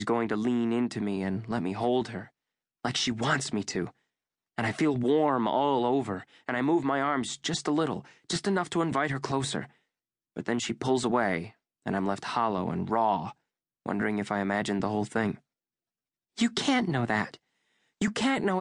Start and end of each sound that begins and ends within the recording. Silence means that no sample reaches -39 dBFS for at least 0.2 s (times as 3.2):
2.85–3.89
4.58–6.22
6.49–8.01
8.3–9.65
10.37–11.48
11.86–13.32
13.86–15.34
16.38–17.34